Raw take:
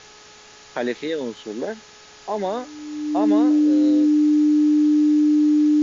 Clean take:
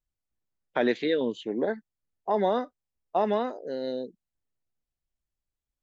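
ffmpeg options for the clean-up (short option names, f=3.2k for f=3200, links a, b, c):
-af "bandreject=f=422.8:t=h:w=4,bandreject=f=845.6:t=h:w=4,bandreject=f=1.2684k:t=h:w=4,bandreject=f=1.6912k:t=h:w=4,bandreject=f=300:w=30,afwtdn=0.0079,asetnsamples=n=441:p=0,asendcmd='4.43 volume volume -7dB',volume=0dB"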